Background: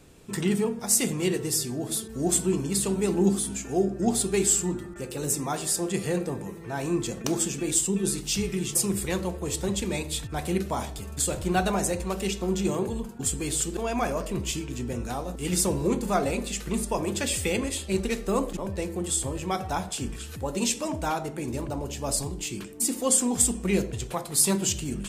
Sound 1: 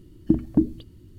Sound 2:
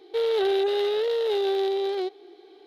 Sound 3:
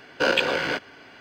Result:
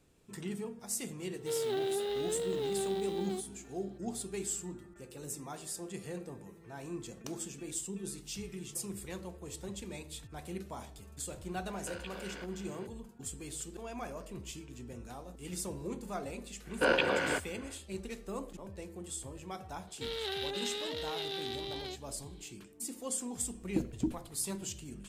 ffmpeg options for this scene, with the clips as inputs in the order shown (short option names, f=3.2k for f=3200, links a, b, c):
-filter_complex "[2:a]asplit=2[a][b];[3:a]asplit=2[c][d];[0:a]volume=-14.5dB[e];[a]acrusher=bits=7:mode=log:mix=0:aa=0.000001[f];[c]acompressor=threshold=-37dB:ratio=4:attack=12:release=156:knee=1:detection=peak[g];[d]aemphasis=mode=reproduction:type=75fm[h];[b]tiltshelf=f=1.1k:g=-9.5[i];[1:a]asoftclip=type=tanh:threshold=-8.5dB[j];[f]atrim=end=2.66,asetpts=PTS-STARTPTS,volume=-10.5dB,afade=t=in:d=0.004:c=hsin,afade=t=out:st=2.656:d=0.004:c=hsin,adelay=1320[k];[g]atrim=end=1.2,asetpts=PTS-STARTPTS,volume=-10dB,afade=t=in:d=0.004:c=hsin,afade=t=out:st=1.196:d=0.004:c=hsin,adelay=11670[l];[h]atrim=end=1.2,asetpts=PTS-STARTPTS,volume=-5.5dB,afade=t=in:d=0.1,afade=t=out:st=1.1:d=0.1,adelay=16610[m];[i]atrim=end=2.66,asetpts=PTS-STARTPTS,volume=-10.5dB,afade=t=in:d=0.004:c=hsin,afade=t=out:st=2.656:d=0.004:c=hsin,adelay=19870[n];[j]atrim=end=1.18,asetpts=PTS-STARTPTS,volume=-12dB,afade=t=in:d=0.004:c=hsin,afade=t=out:st=1.176:d=0.004:c=hsin,adelay=23460[o];[e][k][l][m][n][o]amix=inputs=6:normalize=0"